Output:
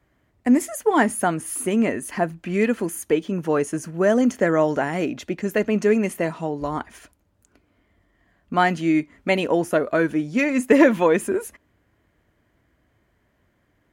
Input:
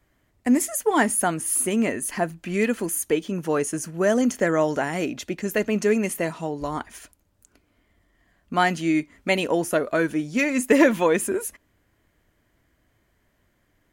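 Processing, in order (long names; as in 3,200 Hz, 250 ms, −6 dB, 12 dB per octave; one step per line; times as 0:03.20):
high-pass filter 45 Hz
high-shelf EQ 3,700 Hz −9.5 dB
level +2.5 dB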